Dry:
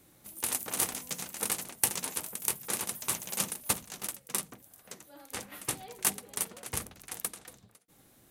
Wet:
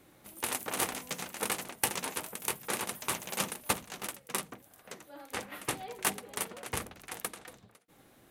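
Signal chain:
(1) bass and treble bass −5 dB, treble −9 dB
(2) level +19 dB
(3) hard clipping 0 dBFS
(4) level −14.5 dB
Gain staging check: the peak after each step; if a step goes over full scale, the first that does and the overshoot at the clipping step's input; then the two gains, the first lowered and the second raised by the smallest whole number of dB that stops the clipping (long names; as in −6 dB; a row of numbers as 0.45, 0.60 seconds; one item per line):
−13.0, +6.0, 0.0, −14.5 dBFS
step 2, 6.0 dB
step 2 +13 dB, step 4 −8.5 dB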